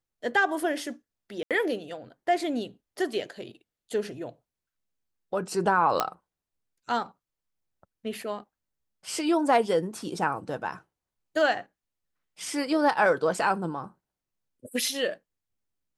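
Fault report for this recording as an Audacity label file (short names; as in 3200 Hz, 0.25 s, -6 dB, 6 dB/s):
1.430000	1.510000	gap 77 ms
6.000000	6.000000	pop -9 dBFS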